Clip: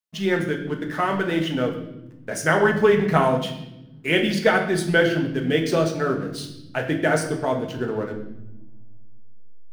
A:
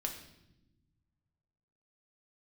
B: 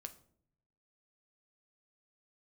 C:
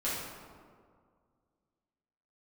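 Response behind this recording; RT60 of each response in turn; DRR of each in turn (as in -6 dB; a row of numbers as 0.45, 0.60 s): A; not exponential, 0.60 s, 2.0 s; 2.0, 7.0, -10.0 dB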